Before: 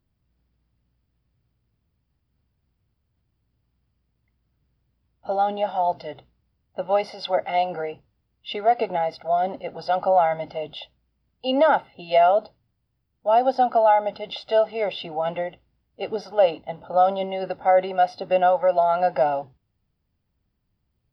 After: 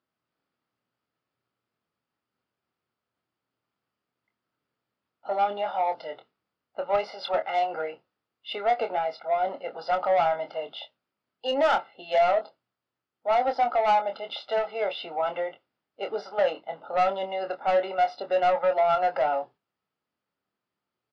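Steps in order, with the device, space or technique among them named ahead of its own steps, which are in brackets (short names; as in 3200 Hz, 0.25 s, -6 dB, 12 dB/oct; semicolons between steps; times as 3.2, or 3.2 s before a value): intercom (BPF 380–4700 Hz; bell 1300 Hz +7 dB 0.37 oct; soft clip -16 dBFS, distortion -13 dB; doubler 25 ms -8 dB); gain -2 dB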